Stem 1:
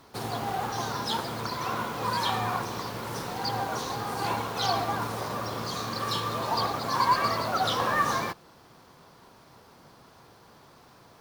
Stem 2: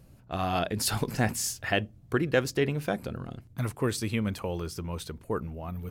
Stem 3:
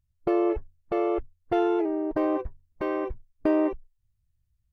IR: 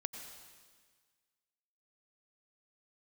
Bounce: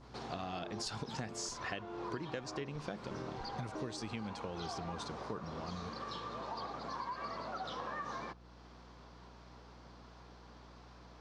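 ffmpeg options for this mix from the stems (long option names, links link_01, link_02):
-filter_complex "[0:a]highpass=frequency=140:width=0.5412,highpass=frequency=140:width=1.3066,adynamicequalizer=threshold=0.0112:dfrequency=1800:dqfactor=0.7:tfrequency=1800:tqfactor=0.7:attack=5:release=100:ratio=0.375:range=2:mode=cutabove:tftype=highshelf,volume=-3.5dB[link_01];[1:a]highpass=130,bass=frequency=250:gain=3,treble=frequency=4000:gain=8,volume=-6dB[link_02];[2:a]adelay=300,volume=-8.5dB[link_03];[link_01][link_03]amix=inputs=2:normalize=0,acompressor=threshold=-54dB:ratio=1.5,volume=0dB[link_04];[link_02][link_04]amix=inputs=2:normalize=0,lowpass=frequency=6200:width=0.5412,lowpass=frequency=6200:width=1.3066,aeval=exprs='val(0)+0.00141*(sin(2*PI*60*n/s)+sin(2*PI*2*60*n/s)/2+sin(2*PI*3*60*n/s)/3+sin(2*PI*4*60*n/s)/4+sin(2*PI*5*60*n/s)/5)':channel_layout=same,acompressor=threshold=-37dB:ratio=12"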